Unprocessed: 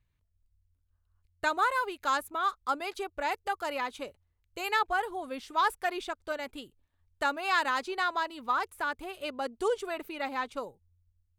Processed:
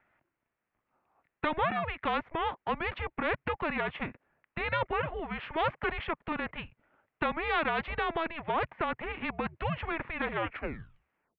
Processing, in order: tape stop at the end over 1.13 s; mistuned SSB -320 Hz 410–2600 Hz; spectral compressor 2:1

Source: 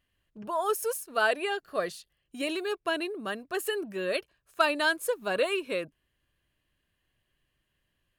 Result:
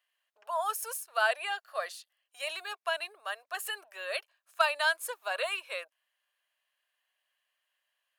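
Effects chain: steep high-pass 620 Hz 36 dB/oct; gain -1 dB

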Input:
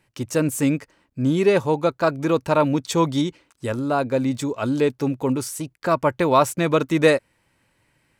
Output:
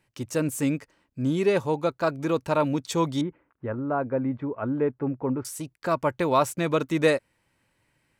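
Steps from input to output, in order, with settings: 3.21–5.45 LPF 1800 Hz 24 dB/oct; gain -5 dB

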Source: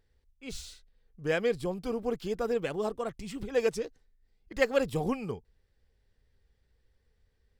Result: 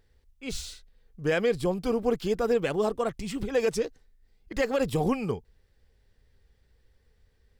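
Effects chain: limiter -22 dBFS, peak gain reduction 10 dB; gain +6 dB

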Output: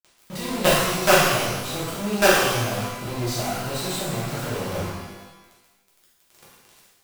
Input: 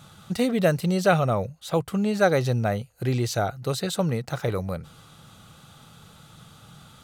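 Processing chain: companded quantiser 2-bit; shimmer reverb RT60 1.1 s, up +12 st, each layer -8 dB, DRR -8.5 dB; gain -10.5 dB

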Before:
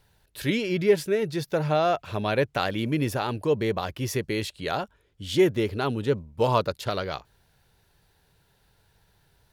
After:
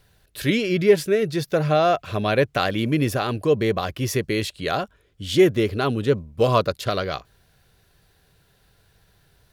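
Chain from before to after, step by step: Butterworth band-stop 890 Hz, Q 6.3; gain +4.5 dB

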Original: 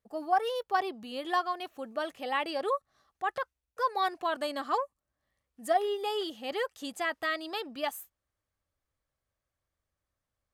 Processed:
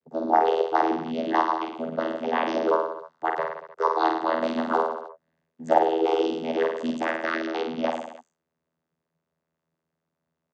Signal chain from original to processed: reverse bouncing-ball echo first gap 50 ms, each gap 1.1×, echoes 5; vocoder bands 16, saw 81.1 Hz; gain +6.5 dB

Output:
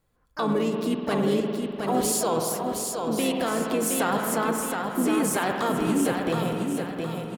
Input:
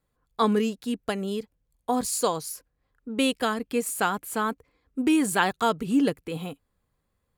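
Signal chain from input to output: in parallel at +2.5 dB: negative-ratio compressor -28 dBFS, ratio -1; on the sum: dynamic EQ 540 Hz, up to +4 dB, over -32 dBFS, Q 0.96; spring tank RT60 2.3 s, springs 49 ms, chirp 75 ms, DRR 6.5 dB; harmoniser -5 st -10 dB, +5 st -11 dB; limiter -10.5 dBFS, peak gain reduction 7 dB; on a send: feedback echo 0.717 s, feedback 41%, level -5 dB; on the sum: gain -5.5 dB

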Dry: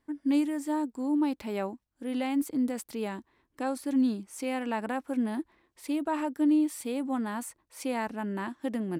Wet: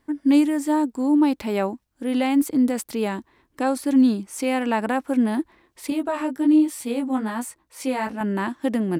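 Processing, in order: 5.9–8.21 chorus 1.2 Hz, delay 15 ms, depth 4.4 ms; gain +9 dB

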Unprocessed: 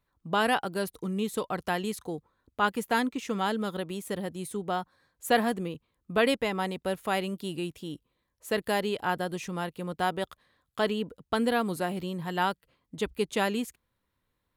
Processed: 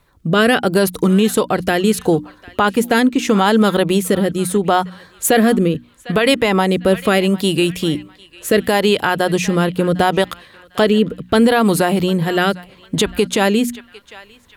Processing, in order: notches 60/120/180/240/300 Hz; in parallel at +2.5 dB: compressor, threshold -36 dBFS, peak gain reduction 16.5 dB; on the sum: rotary speaker horn 0.75 Hz; narrowing echo 0.751 s, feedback 40%, band-pass 2300 Hz, level -20 dB; maximiser +19.5 dB; gain -3 dB

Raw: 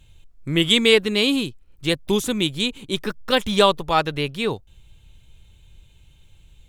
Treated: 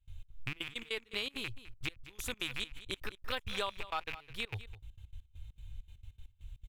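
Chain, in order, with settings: rattling part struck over -33 dBFS, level -15 dBFS; EQ curve 110 Hz 0 dB, 160 Hz -24 dB, 1300 Hz -9 dB, 9000 Hz -13 dB, 13000 Hz -8 dB; compressor 5:1, threshold -37 dBFS, peak gain reduction 13.5 dB; step gate ".xx.xxx.x.x.x." 199 bpm -24 dB; echo 0.208 s -15.5 dB; gain +3.5 dB

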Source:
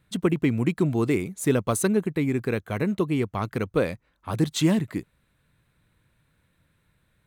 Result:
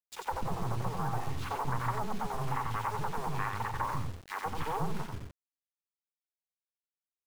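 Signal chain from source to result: bin magnitudes rounded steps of 30 dB; full-wave rectifier; air absorption 56 m; treble ducked by the level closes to 830 Hz, closed at -20 dBFS; resonant low shelf 760 Hz -7 dB, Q 3; notches 50/100 Hz; three bands offset in time highs, mids, lows 40/180 ms, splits 360/2900 Hz; on a send at -15.5 dB: reverb RT60 0.35 s, pre-delay 3 ms; on the sum: bit-crush 8-bit; in parallel at 0 dB: limiter -29 dBFS, peak gain reduction 10.5 dB; on the sum: echo 91 ms -4.5 dB; Doppler distortion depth 0.16 ms; gain -5 dB

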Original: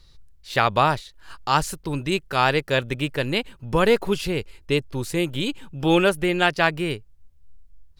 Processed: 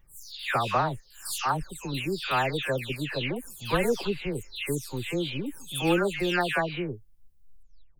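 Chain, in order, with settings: spectral delay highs early, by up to 0.367 s; high shelf 8900 Hz +10 dB; gain -5.5 dB

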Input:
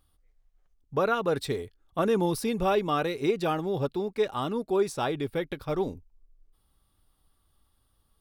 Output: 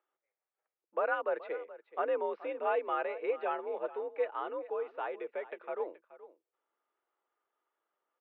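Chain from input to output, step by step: 4.71–5.8 compressor 3:1, threshold -27 dBFS, peak gain reduction 6 dB; echo 0.426 s -17 dB; mistuned SSB +62 Hz 340–2500 Hz; gain -5.5 dB

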